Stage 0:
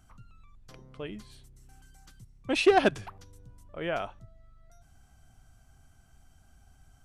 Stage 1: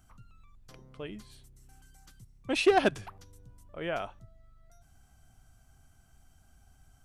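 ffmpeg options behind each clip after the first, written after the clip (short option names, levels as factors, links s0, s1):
-af "highshelf=f=9700:g=5.5,volume=0.794"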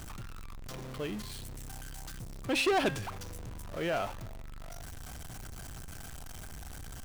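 -af "aeval=exprs='val(0)+0.5*0.00891*sgn(val(0))':c=same,bandreject=f=267.6:t=h:w=4,bandreject=f=535.2:t=h:w=4,bandreject=f=802.8:t=h:w=4,bandreject=f=1070.4:t=h:w=4,bandreject=f=1338:t=h:w=4,bandreject=f=1605.6:t=h:w=4,bandreject=f=1873.2:t=h:w=4,bandreject=f=2140.8:t=h:w=4,bandreject=f=2408.4:t=h:w=4,bandreject=f=2676:t=h:w=4,bandreject=f=2943.6:t=h:w=4,bandreject=f=3211.2:t=h:w=4,bandreject=f=3478.8:t=h:w=4,bandreject=f=3746.4:t=h:w=4,bandreject=f=4014:t=h:w=4,bandreject=f=4281.6:t=h:w=4,bandreject=f=4549.2:t=h:w=4,bandreject=f=4816.8:t=h:w=4,bandreject=f=5084.4:t=h:w=4,bandreject=f=5352:t=h:w=4,bandreject=f=5619.6:t=h:w=4,bandreject=f=5887.2:t=h:w=4,bandreject=f=6154.8:t=h:w=4,bandreject=f=6422.4:t=h:w=4,bandreject=f=6690:t=h:w=4,bandreject=f=6957.6:t=h:w=4,bandreject=f=7225.2:t=h:w=4,bandreject=f=7492.8:t=h:w=4,bandreject=f=7760.4:t=h:w=4,bandreject=f=8028:t=h:w=4,bandreject=f=8295.6:t=h:w=4,bandreject=f=8563.2:t=h:w=4,bandreject=f=8830.8:t=h:w=4,bandreject=f=9098.4:t=h:w=4,asoftclip=type=tanh:threshold=0.0531,volume=1.26"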